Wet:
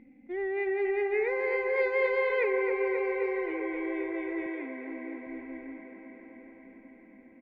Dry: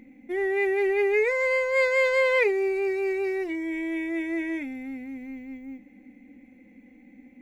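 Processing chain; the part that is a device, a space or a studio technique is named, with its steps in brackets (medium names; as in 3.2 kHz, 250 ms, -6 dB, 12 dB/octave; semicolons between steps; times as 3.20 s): 4.46–5.27 s: elliptic band-pass 170–4700 Hz; shout across a valley (distance through air 310 m; echo from a far wall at 200 m, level -11 dB); feedback echo behind a band-pass 267 ms, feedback 78%, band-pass 1 kHz, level -3.5 dB; trim -5 dB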